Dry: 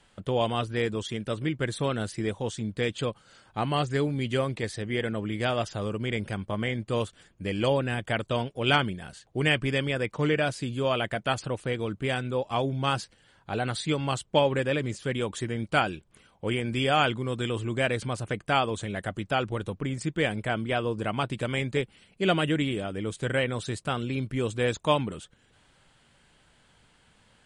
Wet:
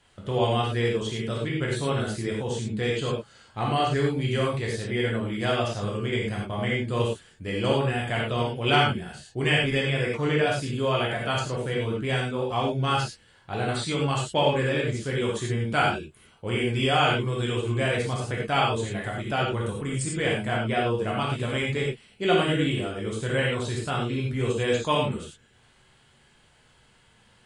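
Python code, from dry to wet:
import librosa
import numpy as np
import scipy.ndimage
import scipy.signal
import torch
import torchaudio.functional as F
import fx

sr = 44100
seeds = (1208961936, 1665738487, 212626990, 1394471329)

y = fx.peak_eq(x, sr, hz=8800.0, db=11.5, octaves=0.6, at=(19.65, 20.14))
y = fx.rev_gated(y, sr, seeds[0], gate_ms=130, shape='flat', drr_db=-4.0)
y = y * librosa.db_to_amplitude(-3.0)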